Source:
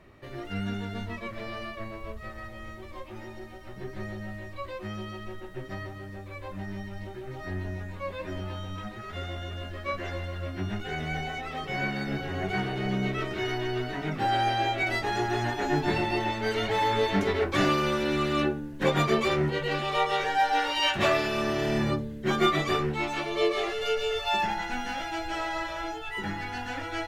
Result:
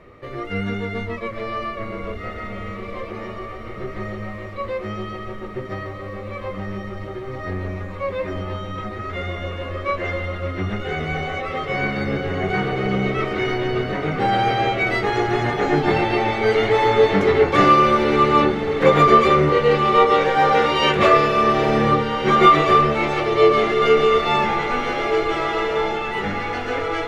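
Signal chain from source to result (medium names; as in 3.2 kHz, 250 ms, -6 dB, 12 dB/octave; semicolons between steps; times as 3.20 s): low-pass 3.9 kHz 6 dB/octave; small resonant body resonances 480/1200/2100 Hz, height 12 dB, ringing for 45 ms; on a send: echo that smears into a reverb 1599 ms, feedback 40%, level -7 dB; on the sum: trim +6 dB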